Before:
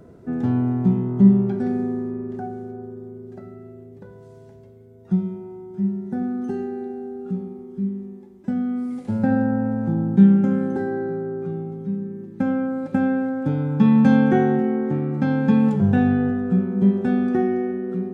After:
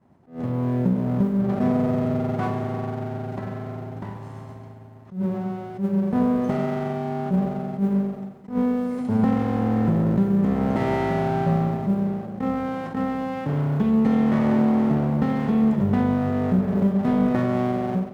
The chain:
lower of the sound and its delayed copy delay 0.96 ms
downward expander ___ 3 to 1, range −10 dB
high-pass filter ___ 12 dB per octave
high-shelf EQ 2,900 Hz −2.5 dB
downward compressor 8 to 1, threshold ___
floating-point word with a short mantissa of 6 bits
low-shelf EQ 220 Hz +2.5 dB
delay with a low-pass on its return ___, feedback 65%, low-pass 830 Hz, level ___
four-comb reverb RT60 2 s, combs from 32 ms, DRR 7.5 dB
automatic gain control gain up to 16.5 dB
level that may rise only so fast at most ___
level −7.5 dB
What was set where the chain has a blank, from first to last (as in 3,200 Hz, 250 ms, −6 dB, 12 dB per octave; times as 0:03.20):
−44 dBFS, 92 Hz, −24 dBFS, 126 ms, −23 dB, 190 dB per second